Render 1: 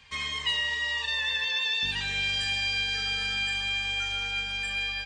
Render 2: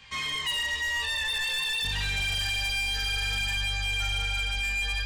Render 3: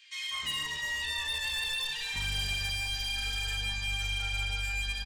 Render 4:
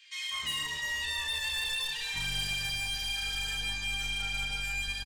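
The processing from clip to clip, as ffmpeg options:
-af "flanger=delay=19:depth=5.3:speed=0.53,asoftclip=type=tanh:threshold=0.0224,asubboost=boost=4.5:cutoff=100,volume=2.24"
-filter_complex "[0:a]acrossover=split=560|1800[s0][s1][s2];[s1]adelay=200[s3];[s0]adelay=310[s4];[s4][s3][s2]amix=inputs=3:normalize=0,volume=0.708"
-filter_complex "[0:a]acrossover=split=480|5400[s0][s1][s2];[s0]aeval=exprs='clip(val(0),-1,0.00447)':c=same[s3];[s2]asplit=2[s4][s5];[s5]adelay=33,volume=0.708[s6];[s4][s6]amix=inputs=2:normalize=0[s7];[s3][s1][s7]amix=inputs=3:normalize=0"

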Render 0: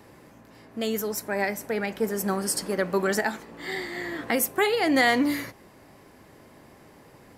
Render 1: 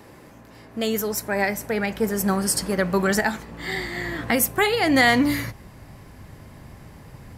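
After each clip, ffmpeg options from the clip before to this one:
-af "asubboost=boost=6:cutoff=140,volume=1.68"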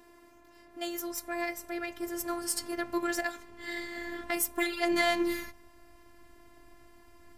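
-af "afftfilt=real='hypot(re,im)*cos(PI*b)':imag='0':win_size=512:overlap=0.75,aeval=exprs='0.708*(cos(1*acos(clip(val(0)/0.708,-1,1)))-cos(1*PI/2))+0.0141*(cos(7*acos(clip(val(0)/0.708,-1,1)))-cos(7*PI/2))':c=same,volume=0.531"

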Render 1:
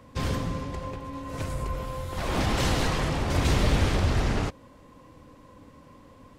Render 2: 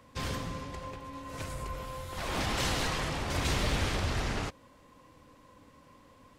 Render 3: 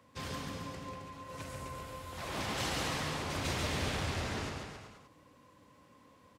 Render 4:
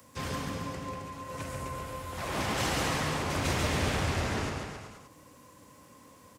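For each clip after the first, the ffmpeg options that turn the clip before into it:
-af "tiltshelf=f=780:g=-3.5,volume=0.562"
-filter_complex "[0:a]highpass=79,asplit=2[s0][s1];[s1]aecho=0:1:140|266|379.4|481.5|573.3:0.631|0.398|0.251|0.158|0.1[s2];[s0][s2]amix=inputs=2:normalize=0,volume=0.531"
-filter_complex "[0:a]equalizer=f=3900:t=o:w=1:g=-4,acrossover=split=330|830|5000[s0][s1][s2][s3];[s3]acompressor=mode=upward:threshold=0.00112:ratio=2.5[s4];[s0][s1][s2][s4]amix=inputs=4:normalize=0,volume=2"

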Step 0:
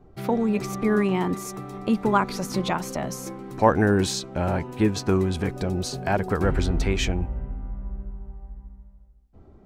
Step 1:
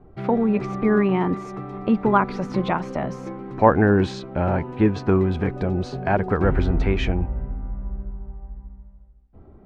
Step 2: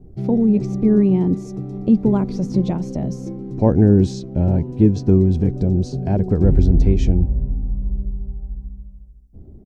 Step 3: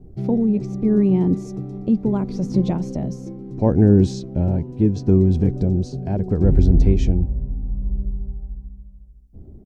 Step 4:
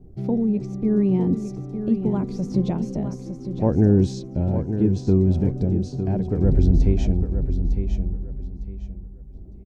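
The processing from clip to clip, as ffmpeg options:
-af "lowpass=2300,volume=1.41"
-af "firequalizer=gain_entry='entry(150,0);entry(1200,-27);entry(5600,-1)':delay=0.05:min_phase=1,volume=2.37"
-af "tremolo=f=0.74:d=0.38"
-af "aecho=1:1:906|1812|2718:0.355|0.0852|0.0204,volume=0.708"

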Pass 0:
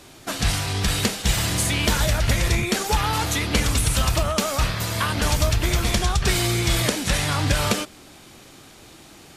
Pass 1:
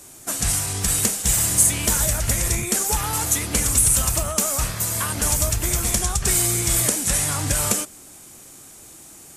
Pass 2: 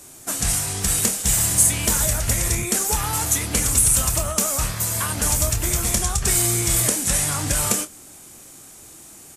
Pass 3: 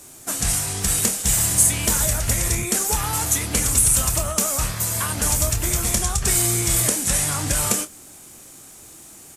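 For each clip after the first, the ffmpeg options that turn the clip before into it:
-af "highshelf=f=5700:t=q:w=1.5:g=12,volume=0.668"
-filter_complex "[0:a]asplit=2[s0][s1];[s1]adelay=26,volume=0.266[s2];[s0][s2]amix=inputs=2:normalize=0"
-af "acrusher=bits=9:mix=0:aa=0.000001"

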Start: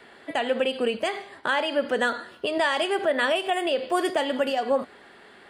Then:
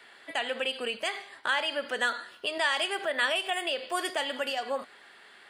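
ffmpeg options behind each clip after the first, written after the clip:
-af "tiltshelf=f=740:g=-8,volume=0.447"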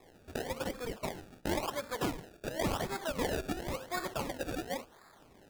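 -af "acrusher=samples=29:mix=1:aa=0.000001:lfo=1:lforange=29:lforate=0.94,volume=0.531"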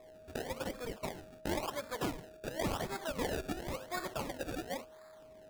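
-af "aeval=exprs='val(0)+0.00282*sin(2*PI*630*n/s)':c=same,volume=0.75"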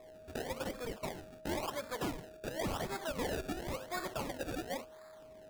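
-af "aeval=exprs='0.0708*(cos(1*acos(clip(val(0)/0.0708,-1,1)))-cos(1*PI/2))+0.00891*(cos(5*acos(clip(val(0)/0.0708,-1,1)))-cos(5*PI/2))':c=same,volume=0.708"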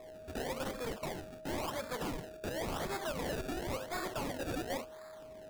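-af "aeval=exprs='0.0158*(abs(mod(val(0)/0.0158+3,4)-2)-1)':c=same,volume=1.58"

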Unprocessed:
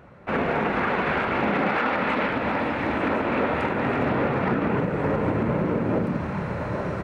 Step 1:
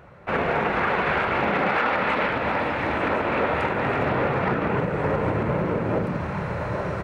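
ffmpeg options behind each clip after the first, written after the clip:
-af "equalizer=f=250:t=o:w=0.83:g=-7,volume=1.26"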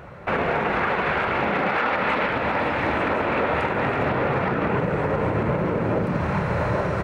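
-af "alimiter=limit=0.0944:level=0:latency=1:release=370,volume=2.24"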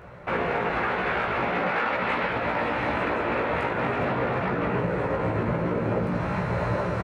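-filter_complex "[0:a]asplit=2[s0][s1];[s1]adelay=17,volume=0.708[s2];[s0][s2]amix=inputs=2:normalize=0,volume=0.562"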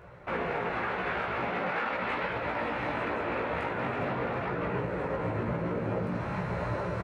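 -af "flanger=delay=1.9:depth=9.5:regen=-67:speed=0.43:shape=sinusoidal,volume=0.841"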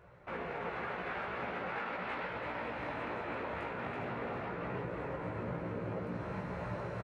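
-af "aecho=1:1:332:0.531,volume=0.376"

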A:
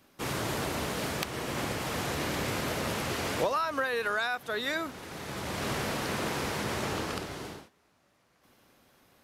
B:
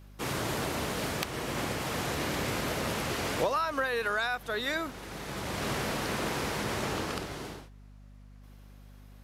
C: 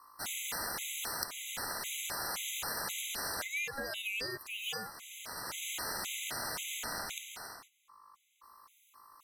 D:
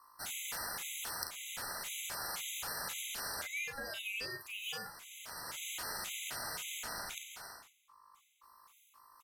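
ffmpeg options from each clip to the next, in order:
-af "aeval=exprs='val(0)+0.00316*(sin(2*PI*50*n/s)+sin(2*PI*2*50*n/s)/2+sin(2*PI*3*50*n/s)/3+sin(2*PI*4*50*n/s)/4+sin(2*PI*5*50*n/s)/5)':c=same"
-af "aeval=exprs='val(0)*sin(2*PI*1100*n/s)':c=same,crystalizer=i=4.5:c=0,afftfilt=real='re*gt(sin(2*PI*1.9*pts/sr)*(1-2*mod(floor(b*sr/1024/2000),2)),0)':imag='im*gt(sin(2*PI*1.9*pts/sr)*(1-2*mod(floor(b*sr/1024/2000),2)),0)':win_size=1024:overlap=0.75,volume=0.473"
-af "equalizer=f=300:w=0.93:g=-4,areverse,acompressor=mode=upward:threshold=0.00158:ratio=2.5,areverse,aecho=1:1:38|50:0.376|0.224,volume=0.668"

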